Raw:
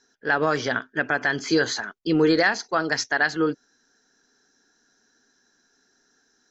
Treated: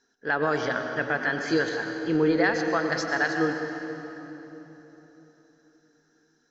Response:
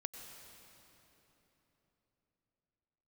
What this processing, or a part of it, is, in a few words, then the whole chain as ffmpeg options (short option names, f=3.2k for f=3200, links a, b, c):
swimming-pool hall: -filter_complex "[0:a]asettb=1/sr,asplit=3[a][b][c];[a]atrim=end=1.694[d];[b]atrim=start=1.69:end=2.44,asetpts=PTS-STARTPTS,afade=t=in:d=0.004:c=qsin,afade=t=out:st=0.746:d=0.004:c=qsin,bass=f=250:g=0,treble=f=4k:g=-13[e];[c]atrim=start=2.436[f];[d][e]acrossfade=d=0.004:c1=hsin:c2=qsin[g];[g][f]acrossfade=d=0.004:c1=qsin:c2=hsin[h];[1:a]atrim=start_sample=2205[i];[h][i]afir=irnorm=-1:irlink=0,highshelf=f=4.6k:g=-7.5"